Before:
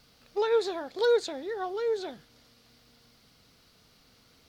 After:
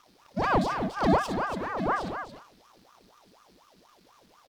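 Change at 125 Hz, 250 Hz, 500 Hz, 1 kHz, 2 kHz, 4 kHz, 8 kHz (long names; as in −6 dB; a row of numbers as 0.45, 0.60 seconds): can't be measured, +12.0 dB, −4.5 dB, +9.0 dB, +6.5 dB, −3.0 dB, −0.5 dB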